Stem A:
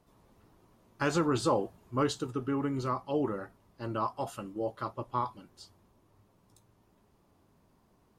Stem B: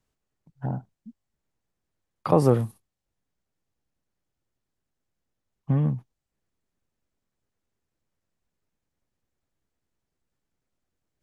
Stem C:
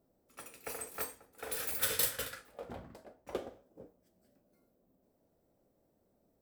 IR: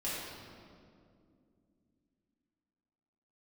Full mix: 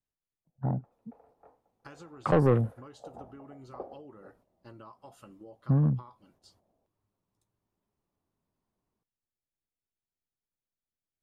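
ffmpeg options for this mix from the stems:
-filter_complex "[0:a]acompressor=threshold=-38dB:ratio=12,agate=range=-10dB:threshold=-59dB:ratio=16:detection=peak,adelay=850,volume=-8dB[link_01];[1:a]afwtdn=0.0126,volume=0dB[link_02];[2:a]lowpass=frequency=790:width_type=q:width=3.4,adelay=450,volume=-6.5dB,afade=type=in:start_time=2.44:duration=0.41:silence=0.251189[link_03];[link_01][link_02][link_03]amix=inputs=3:normalize=0,asoftclip=type=tanh:threshold=-14.5dB"

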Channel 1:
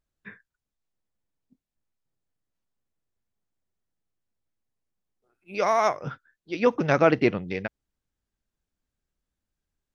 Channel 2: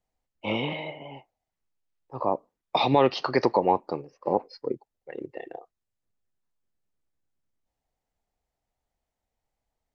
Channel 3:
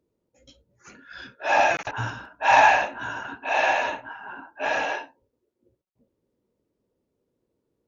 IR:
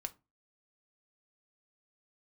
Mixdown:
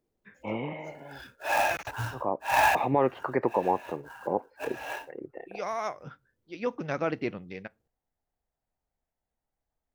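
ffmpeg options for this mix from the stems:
-filter_complex "[0:a]lowpass=frequency=2100:poles=1,aemphasis=mode=production:type=75fm,volume=-12dB,asplit=2[link_01][link_02];[link_02]volume=-5.5dB[link_03];[1:a]lowpass=frequency=2100:width=0.5412,lowpass=frequency=2100:width=1.3066,volume=-4dB,asplit=2[link_04][link_05];[2:a]highpass=frequency=50:width=0.5412,highpass=frequency=50:width=1.3066,asubboost=boost=7:cutoff=88,acrusher=bits=3:mode=log:mix=0:aa=0.000001,volume=-6dB[link_06];[link_05]apad=whole_len=347303[link_07];[link_06][link_07]sidechaincompress=threshold=-43dB:ratio=6:attack=16:release=185[link_08];[3:a]atrim=start_sample=2205[link_09];[link_03][link_09]afir=irnorm=-1:irlink=0[link_10];[link_01][link_04][link_08][link_10]amix=inputs=4:normalize=0"

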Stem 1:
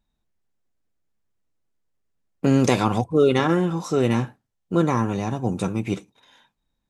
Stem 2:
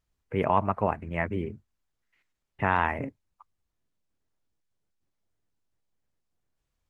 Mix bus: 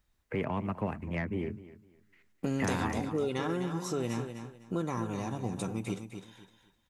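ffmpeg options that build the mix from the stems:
ffmpeg -i stem1.wav -i stem2.wav -filter_complex "[0:a]highshelf=frequency=8400:gain=10,acompressor=threshold=-29dB:ratio=2.5,volume=-4.5dB,asplit=2[link_01][link_02];[link_02]volume=-8.5dB[link_03];[1:a]equalizer=frequency=1800:width=1.5:gain=4.5,acrossover=split=160|330|3100[link_04][link_05][link_06][link_07];[link_04]acompressor=threshold=-43dB:ratio=4[link_08];[link_05]acompressor=threshold=-34dB:ratio=4[link_09];[link_06]acompressor=threshold=-40dB:ratio=4[link_10];[link_07]acompressor=threshold=-53dB:ratio=4[link_11];[link_08][link_09][link_10][link_11]amix=inputs=4:normalize=0,asoftclip=type=tanh:threshold=-24dB,volume=2.5dB,asplit=2[link_12][link_13];[link_13]volume=-17dB[link_14];[link_03][link_14]amix=inputs=2:normalize=0,aecho=0:1:253|506|759|1012:1|0.25|0.0625|0.0156[link_15];[link_01][link_12][link_15]amix=inputs=3:normalize=0" out.wav

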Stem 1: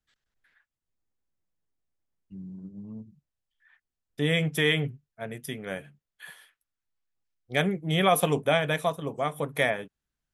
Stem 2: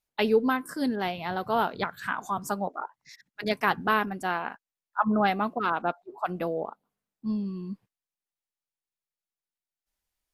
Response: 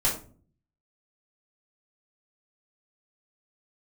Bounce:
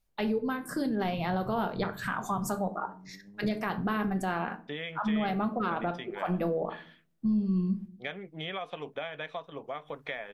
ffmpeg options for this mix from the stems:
-filter_complex "[0:a]highpass=frequency=520:poles=1,acompressor=threshold=-32dB:ratio=6,lowpass=frequency=4200:width=0.5412,lowpass=frequency=4200:width=1.3066,adelay=500,volume=-2dB[link_01];[1:a]lowshelf=frequency=370:gain=10.5,acompressor=threshold=-26dB:ratio=10,volume=0dB,asplit=2[link_02][link_03];[link_03]volume=-16.5dB[link_04];[2:a]atrim=start_sample=2205[link_05];[link_04][link_05]afir=irnorm=-1:irlink=0[link_06];[link_01][link_02][link_06]amix=inputs=3:normalize=0,alimiter=limit=-21.5dB:level=0:latency=1:release=25"

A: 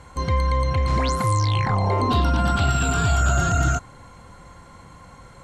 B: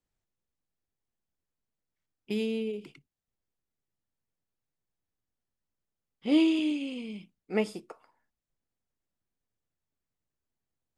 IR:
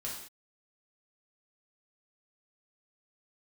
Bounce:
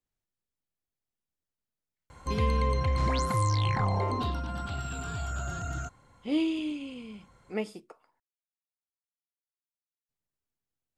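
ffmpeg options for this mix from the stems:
-filter_complex "[0:a]adelay=2100,volume=-6dB,afade=type=out:start_time=3.86:duration=0.57:silence=0.354813[link_01];[1:a]volume=-4.5dB,asplit=3[link_02][link_03][link_04];[link_02]atrim=end=8.2,asetpts=PTS-STARTPTS,afade=type=out:start_time=8.196:duration=0.004:curve=hsin[link_05];[link_03]atrim=start=8.2:end=10.09,asetpts=PTS-STARTPTS,volume=0[link_06];[link_04]atrim=start=10.09,asetpts=PTS-STARTPTS,afade=type=in:duration=0.004:curve=hsin[link_07];[link_05][link_06][link_07]concat=n=3:v=0:a=1[link_08];[link_01][link_08]amix=inputs=2:normalize=0"

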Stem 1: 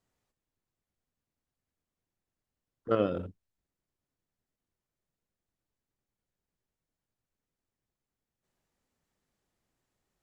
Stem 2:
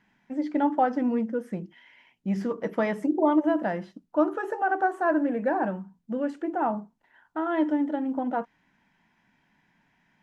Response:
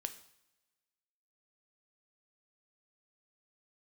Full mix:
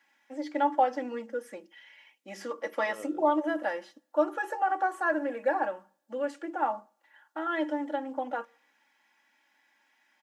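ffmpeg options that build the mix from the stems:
-filter_complex "[0:a]acompressor=threshold=-32dB:ratio=6,volume=-4dB[link_01];[1:a]highpass=370,highshelf=frequency=3000:gain=8.5,aecho=1:1:3.6:0.75,volume=-4.5dB,asplit=3[link_02][link_03][link_04];[link_03]volume=-14.5dB[link_05];[link_04]apad=whole_len=450876[link_06];[link_01][link_06]sidechaincompress=threshold=-30dB:ratio=8:attack=16:release=390[link_07];[2:a]atrim=start_sample=2205[link_08];[link_05][link_08]afir=irnorm=-1:irlink=0[link_09];[link_07][link_02][link_09]amix=inputs=3:normalize=0,highpass=340"

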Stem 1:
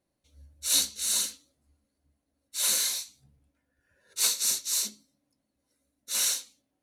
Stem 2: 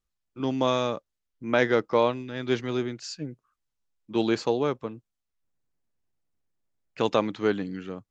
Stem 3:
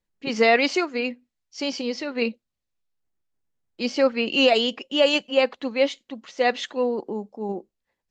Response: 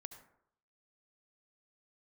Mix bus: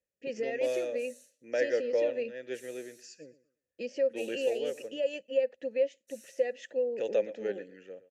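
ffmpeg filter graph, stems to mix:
-filter_complex "[0:a]acompressor=threshold=-35dB:ratio=6,volume=-8dB[link_01];[1:a]volume=1dB,asplit=2[link_02][link_03];[link_03]volume=-17dB[link_04];[2:a]lowshelf=frequency=220:gain=9,acompressor=threshold=-27dB:ratio=4,equalizer=frequency=60:width=0.33:gain=12,volume=1.5dB[link_05];[link_04]aecho=0:1:117|234|351|468:1|0.24|0.0576|0.0138[link_06];[link_01][link_02][link_05][link_06]amix=inputs=4:normalize=0,aexciter=amount=10.7:drive=3.5:freq=5700,asplit=3[link_07][link_08][link_09];[link_07]bandpass=frequency=530:width_type=q:width=8,volume=0dB[link_10];[link_08]bandpass=frequency=1840:width_type=q:width=8,volume=-6dB[link_11];[link_09]bandpass=frequency=2480:width_type=q:width=8,volume=-9dB[link_12];[link_10][link_11][link_12]amix=inputs=3:normalize=0"

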